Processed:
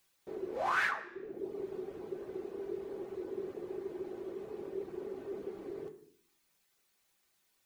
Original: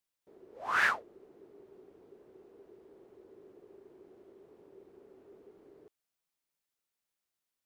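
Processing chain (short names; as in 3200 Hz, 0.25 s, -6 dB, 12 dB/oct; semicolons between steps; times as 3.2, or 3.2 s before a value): reverb removal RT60 0.7 s; compressor 5:1, threshold -47 dBFS, peak gain reduction 20.5 dB; on a send: reverb RT60 0.65 s, pre-delay 3 ms, DRR 2 dB; on the sum: gain +14 dB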